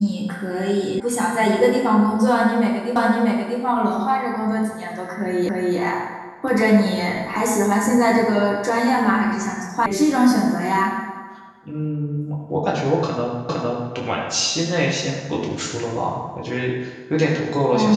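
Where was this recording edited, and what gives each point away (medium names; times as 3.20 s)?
1.00 s: sound stops dead
2.96 s: repeat of the last 0.64 s
5.49 s: repeat of the last 0.29 s
9.86 s: sound stops dead
13.49 s: repeat of the last 0.46 s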